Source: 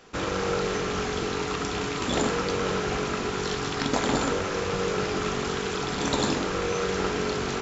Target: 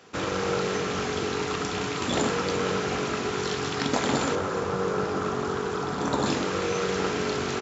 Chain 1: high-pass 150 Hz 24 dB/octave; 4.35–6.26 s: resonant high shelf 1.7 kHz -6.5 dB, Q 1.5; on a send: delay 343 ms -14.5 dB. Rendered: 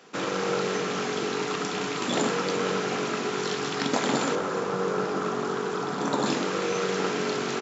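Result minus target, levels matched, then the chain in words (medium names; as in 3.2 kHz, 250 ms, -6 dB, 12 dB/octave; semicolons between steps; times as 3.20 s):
125 Hz band -3.5 dB
high-pass 74 Hz 24 dB/octave; 4.35–6.26 s: resonant high shelf 1.7 kHz -6.5 dB, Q 1.5; on a send: delay 343 ms -14.5 dB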